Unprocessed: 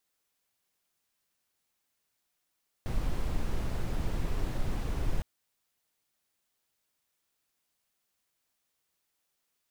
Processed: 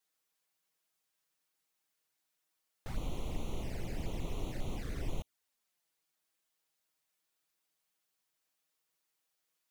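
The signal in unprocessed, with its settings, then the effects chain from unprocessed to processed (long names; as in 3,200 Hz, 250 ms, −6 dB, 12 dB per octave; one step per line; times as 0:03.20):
noise brown, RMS −29 dBFS 2.36 s
low-shelf EQ 220 Hz −7 dB
flanger swept by the level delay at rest 6.4 ms, full sweep at −32 dBFS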